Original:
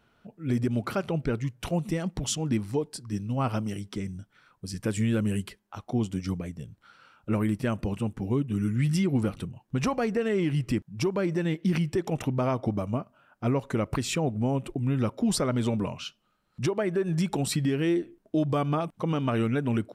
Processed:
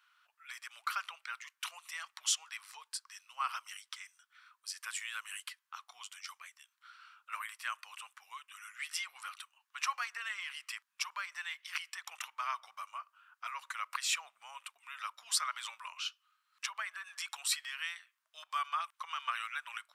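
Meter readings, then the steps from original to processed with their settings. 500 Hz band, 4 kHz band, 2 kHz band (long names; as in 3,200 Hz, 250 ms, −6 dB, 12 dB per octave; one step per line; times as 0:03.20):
−37.5 dB, 0.0 dB, −0.5 dB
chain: elliptic high-pass filter 1,100 Hz, stop band 70 dB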